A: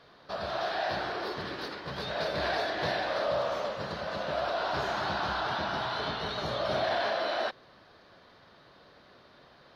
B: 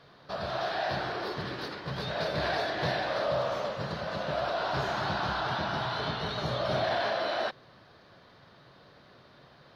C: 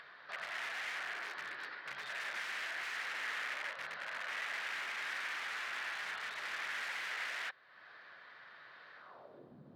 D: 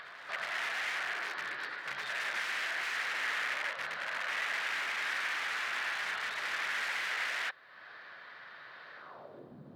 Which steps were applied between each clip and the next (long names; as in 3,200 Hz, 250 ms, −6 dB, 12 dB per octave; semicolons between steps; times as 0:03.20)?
parametric band 130 Hz +7.5 dB 0.91 octaves
wrap-around overflow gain 28 dB; band-pass filter sweep 1,800 Hz → 220 Hz, 0:08.95–0:09.56; upward compression, threshold −46 dBFS
backwards echo 367 ms −16.5 dB; level +5.5 dB